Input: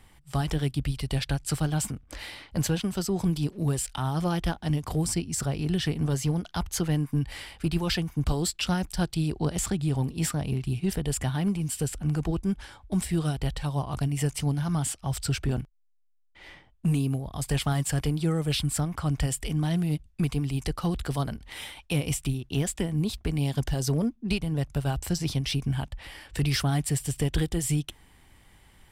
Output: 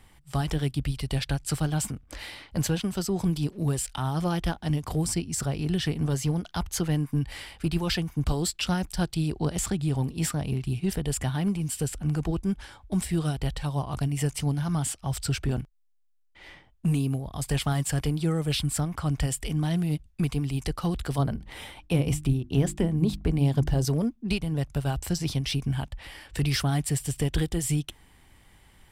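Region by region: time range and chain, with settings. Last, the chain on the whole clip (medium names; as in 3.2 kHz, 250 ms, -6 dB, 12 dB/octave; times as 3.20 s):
21.18–23.85 s: tilt shelf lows +5 dB, about 1.3 kHz + hum notches 50/100/150/200/250/300/350 Hz
whole clip: none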